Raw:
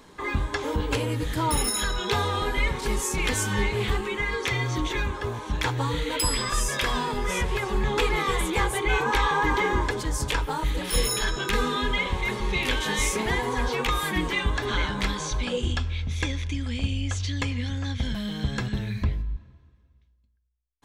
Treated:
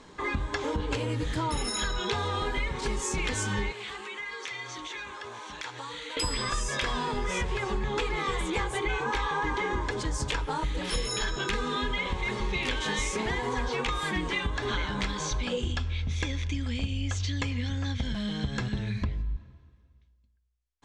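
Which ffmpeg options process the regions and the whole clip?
-filter_complex "[0:a]asettb=1/sr,asplit=3[a][b][c];[a]atrim=end=3.724[d];[b]atrim=start=3.72:end=6.17,asetpts=PTS-STARTPTS,afade=t=in:d=0.004:c=qsin,afade=t=out:st=2.446:d=0.004:c=qsin,highpass=f=1.2k:p=1,acompressor=threshold=-37dB:ratio=2.5:attack=3.2:release=140:knee=1:detection=peak[e];[c]atrim=start=6.166[f];[d][e]acrossfade=d=0.004:c1=hsin:c2=qsin[g];[g][f]acrossfade=d=0.004:c1=qsin:c2=hsin,lowpass=f=8.3k:w=0.5412,lowpass=f=8.3k:w=1.3066,acompressor=threshold=-26dB:ratio=6"

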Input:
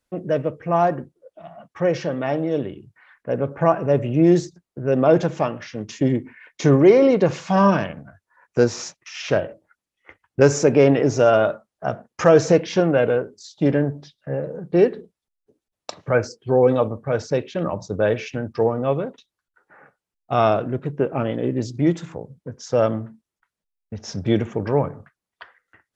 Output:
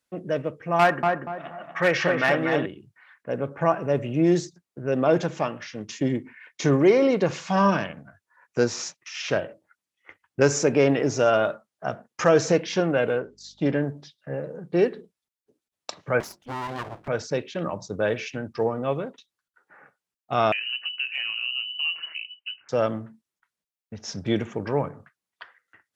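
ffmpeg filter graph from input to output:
-filter_complex "[0:a]asettb=1/sr,asplit=3[a][b][c];[a]atrim=end=0.794[d];[b]atrim=start=0.79:end=2.66,asetpts=PTS-STARTPTS,afade=t=in:d=0.004:c=qsin,afade=t=out:st=1.866:d=0.004:c=qsin,equalizer=f=1.8k:t=o:w=1.9:g=13.5,aeval=exprs='clip(val(0),-1,0.251)':c=same,asplit=2[e][f];[f]adelay=239,lowpass=f=1.5k:p=1,volume=-3dB,asplit=2[g][h];[h]adelay=239,lowpass=f=1.5k:p=1,volume=0.34,asplit=2[i][j];[j]adelay=239,lowpass=f=1.5k:p=1,volume=0.34,asplit=2[k][l];[l]adelay=239,lowpass=f=1.5k:p=1,volume=0.34[m];[e][g][i][k][m]amix=inputs=5:normalize=0,atrim=end_sample=82467[n];[c]atrim=start=2.656[o];[d][n]acrossfade=d=0.004:c1=hsin:c2=qsin[p];[p][o]acrossfade=d=0.004:c1=qsin:c2=hsin,asettb=1/sr,asplit=3[q][r][s];[q]atrim=end=13.194[t];[r]atrim=start=13.19:end=13.82,asetpts=PTS-STARTPTS,afade=t=in:d=0.004:c=qsin,afade=t=out:st=0.626:d=0.004:c=qsin,lowpass=6.5k,aeval=exprs='val(0)+0.002*(sin(2*PI*50*n/s)+sin(2*PI*2*50*n/s)/2+sin(2*PI*3*50*n/s)/3+sin(2*PI*4*50*n/s)/4+sin(2*PI*5*50*n/s)/5)':c=same[u];[s]atrim=start=13.816[v];[t][u]acrossfade=d=0.004:c1=hsin:c2=qsin[w];[w][v]acrossfade=d=0.004:c1=qsin:c2=hsin,asettb=1/sr,asplit=3[x][y][z];[x]atrim=end=16.204[aa];[y]atrim=start=16.2:end=17.08,asetpts=PTS-STARTPTS,afade=t=in:d=0.004:c=qsin,afade=t=out:st=0.876:d=0.004:c=qsin,bandreject=f=50:t=h:w=6,bandreject=f=100:t=h:w=6,bandreject=f=150:t=h:w=6,bandreject=f=200:t=h:w=6,bandreject=f=250:t=h:w=6,bandreject=f=300:t=h:w=6,acompressor=threshold=-20dB:ratio=4:attack=3.2:release=140:knee=1:detection=peak,aeval=exprs='abs(val(0))':c=same[ab];[z]atrim=start=17.076[ac];[aa][ab]acrossfade=d=0.004:c1=hsin:c2=qsin[ad];[ad][ac]acrossfade=d=0.004:c1=qsin:c2=hsin,asettb=1/sr,asplit=3[ae][af][ag];[ae]atrim=end=20.524[ah];[af]atrim=start=20.52:end=22.69,asetpts=PTS-STARTPTS,afade=t=in:d=0.004:c=qsin,afade=t=out:st=2.166:d=0.004:c=qsin,lowpass=f=2.6k:t=q:w=0.5098,lowpass=f=2.6k:t=q:w=0.6013,lowpass=f=2.6k:t=q:w=0.9,lowpass=f=2.6k:t=q:w=2.563,afreqshift=-3100,acompressor=threshold=-27dB:ratio=2.5:attack=3.2:release=140:knee=1:detection=peak[ai];[ag]atrim=start=22.686[aj];[ah][ai]acrossfade=d=0.004:c1=hsin:c2=qsin[ak];[ak][aj]acrossfade=d=0.004:c1=qsin:c2=hsin,highpass=f=220:p=1,equalizer=f=540:t=o:w=2.2:g=-4.5"

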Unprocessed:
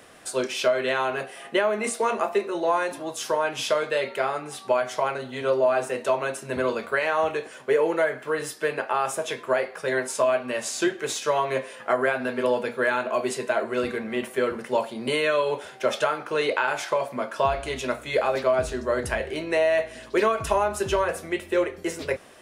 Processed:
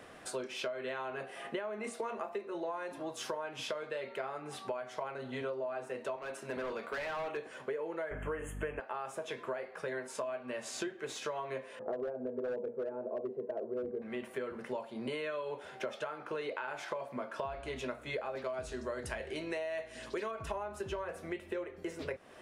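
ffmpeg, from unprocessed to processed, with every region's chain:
-filter_complex "[0:a]asettb=1/sr,asplit=3[a][b][c];[a]atrim=end=6.164[d];[b]atrim=start=6.16:end=7.37,asetpts=PTS-STARTPTS,afade=t=in:d=0.004:c=qsin,afade=t=out:st=1.206:d=0.004:c=qsin,highpass=f=330:p=1,volume=26dB,asoftclip=hard,volume=-26dB[e];[c]atrim=start=7.366[f];[d][e]acrossfade=d=0.004:c1=hsin:c2=qsin[g];[g][f]acrossfade=d=0.004:c1=qsin:c2=hsin,asettb=1/sr,asplit=3[h][i][j];[h]atrim=end=8.114[k];[i]atrim=start=8.11:end=8.8,asetpts=PTS-STARTPTS,afade=t=in:d=0.004:c=qsin,afade=t=out:st=0.686:d=0.004:c=qsin,acontrast=76,aeval=exprs='val(0)+0.0282*(sin(2*PI*50*n/s)+sin(2*PI*2*50*n/s)/2+sin(2*PI*3*50*n/s)/3+sin(2*PI*4*50*n/s)/4+sin(2*PI*5*50*n/s)/5)':c=same,asuperstop=centerf=4600:order=20:qfactor=1.5[l];[j]atrim=start=8.796[m];[k][l]acrossfade=d=0.004:c1=hsin:c2=qsin[n];[n][m]acrossfade=d=0.004:c1=qsin:c2=hsin,asettb=1/sr,asplit=3[o][p][q];[o]atrim=end=11.794[r];[p]atrim=start=11.79:end=14.02,asetpts=PTS-STARTPTS,afade=t=in:d=0.004:c=qsin,afade=t=out:st=2.226:d=0.004:c=qsin,lowpass=f=490:t=q:w=2.5,asoftclip=type=hard:threshold=-15.5dB[s];[q]atrim=start=14.016[t];[r][s]acrossfade=d=0.004:c1=hsin:c2=qsin[u];[u][t]acrossfade=d=0.004:c1=qsin:c2=hsin,asettb=1/sr,asplit=3[v][w][x];[v]atrim=end=18.444[y];[w]atrim=start=18.44:end=20.31,asetpts=PTS-STARTPTS,afade=t=in:d=0.004:c=qsin,afade=t=out:st=1.866:d=0.004:c=qsin,lowpass=8k,aemphasis=mode=production:type=75fm[z];[x]atrim=start=20.306[aa];[y][z]acrossfade=d=0.004:c1=hsin:c2=qsin[ab];[ab][aa]acrossfade=d=0.004:c1=qsin:c2=hsin,highshelf=f=4.1k:g=-10.5,acompressor=threshold=-35dB:ratio=6,volume=-1.5dB"

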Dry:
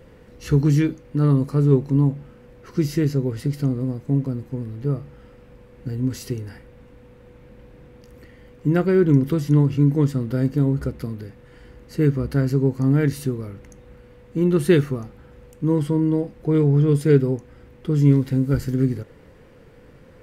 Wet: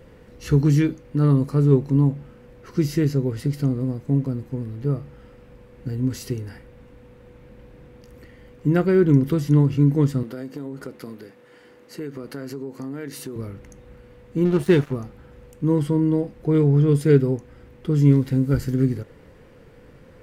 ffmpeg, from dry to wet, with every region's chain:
-filter_complex "[0:a]asettb=1/sr,asplit=3[a][b][c];[a]atrim=end=10.234[d];[b]atrim=start=10.23:end=13.36,asetpts=PTS-STARTPTS,afade=t=in:d=0.004:c=qsin,afade=t=out:st=3.126:d=0.004:c=qsin,highpass=280,acompressor=threshold=-28dB:ratio=6:attack=3.2:release=140:knee=1:detection=peak[e];[c]atrim=start=13.356[f];[d][e]acrossfade=d=0.004:c1=hsin:c2=qsin[g];[g][f]acrossfade=d=0.004:c1=qsin:c2=hsin,asettb=1/sr,asplit=3[h][i][j];[h]atrim=end=14.454[k];[i]atrim=start=14.45:end=14.93,asetpts=PTS-STARTPTS,afade=t=in:d=0.004:c=qsin,afade=t=out:st=0.476:d=0.004:c=qsin,highshelf=f=5.5k:g=-6,acompressor=mode=upward:threshold=-23dB:ratio=2.5:attack=3.2:release=140:knee=2.83:detection=peak,aeval=exprs='sgn(val(0))*max(abs(val(0))-0.0237,0)':c=same[l];[j]atrim=start=14.926[m];[k][l]acrossfade=d=0.004:c1=hsin:c2=qsin[n];[n][m]acrossfade=d=0.004:c1=qsin:c2=hsin"

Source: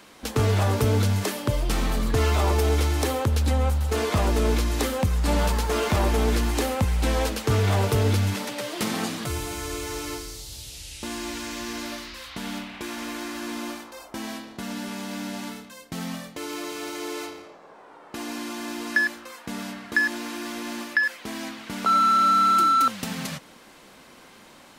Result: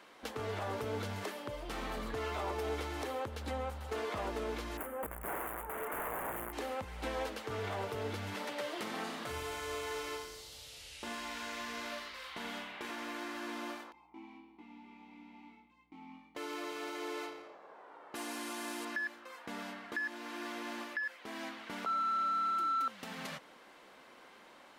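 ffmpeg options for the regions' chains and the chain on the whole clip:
-filter_complex "[0:a]asettb=1/sr,asplit=3[a][b][c];[a]atrim=end=4.774[d];[b]atrim=start=4.77:end=6.53,asetpts=PTS-STARTPTS,afade=t=in:d=0.004:c=qsin,afade=t=out:st=1.756:d=0.004:c=qsin,aeval=exprs='(mod(7.94*val(0)+1,2)-1)/7.94':c=same,asuperstop=centerf=4700:order=4:qfactor=0.51,aemphasis=mode=production:type=cd[e];[c]atrim=start=6.526[f];[d][e]acrossfade=d=0.004:c1=hsin:c2=qsin[g];[g][f]acrossfade=d=0.004:c1=qsin:c2=hsin,asettb=1/sr,asplit=3[h][i][j];[h]atrim=end=9.014[k];[i]atrim=start=9.01:end=12.91,asetpts=PTS-STARTPTS,afade=t=in:d=0.004:c=qsin,afade=t=out:st=3.896:d=0.004:c=qsin,bandreject=f=50:t=h:w=6,bandreject=f=100:t=h:w=6,bandreject=f=150:t=h:w=6,bandreject=f=200:t=h:w=6,bandreject=f=250:t=h:w=6,bandreject=f=300:t=h:w=6,bandreject=f=350:t=h:w=6,asplit=2[l][m];[m]adelay=39,volume=-5.5dB[n];[l][n]amix=inputs=2:normalize=0,atrim=end_sample=171990,aecho=1:1:88:0.299,atrim=end_sample=171990[o];[j]atrim=start=12.906[p];[k][o]acrossfade=d=0.004:c1=hsin:c2=qsin[q];[q][p]acrossfade=d=0.004:c1=qsin:c2=hsin,asettb=1/sr,asplit=3[r][s][t];[r]atrim=end=13.924[u];[s]atrim=start=13.92:end=16.35,asetpts=PTS-STARTPTS,afade=t=in:d=0.004:c=qsin,afade=t=out:st=2.426:d=0.004:c=qsin,asplit=3[v][w][x];[v]bandpass=f=300:t=q:w=8,volume=0dB[y];[w]bandpass=f=870:t=q:w=8,volume=-6dB[z];[x]bandpass=f=2.24k:t=q:w=8,volume=-9dB[aa];[y][z][aa]amix=inputs=3:normalize=0,aeval=exprs='val(0)+0.000891*(sin(2*PI*60*n/s)+sin(2*PI*2*60*n/s)/2+sin(2*PI*3*60*n/s)/3+sin(2*PI*4*60*n/s)/4+sin(2*PI*5*60*n/s)/5)':c=same,asplit=2[ab][ac];[ac]adelay=22,volume=-2.5dB[ad];[ab][ad]amix=inputs=2:normalize=0,atrim=end_sample=107163[ae];[t]atrim=start=16.346[af];[u][ae]acrossfade=d=0.004:c1=hsin:c2=qsin[ag];[ag][af]acrossfade=d=0.004:c1=qsin:c2=hsin,asettb=1/sr,asplit=3[ah][ai][aj];[ah]atrim=end=18.154[ak];[ai]atrim=start=18.15:end=18.85,asetpts=PTS-STARTPTS,afade=t=in:d=0.004:c=qsin,afade=t=out:st=0.696:d=0.004:c=qsin,acrusher=bits=7:mode=log:mix=0:aa=0.000001,equalizer=f=10k:t=o:w=1.2:g=13.5[al];[aj]atrim=start=18.846[am];[ak][al]acrossfade=d=0.004:c1=hsin:c2=qsin[an];[an][am]acrossfade=d=0.004:c1=qsin:c2=hsin,bass=f=250:g=-13,treble=f=4k:g=-10,bandreject=f=2.5k:w=29,alimiter=limit=-22.5dB:level=0:latency=1:release=453,volume=-5.5dB"

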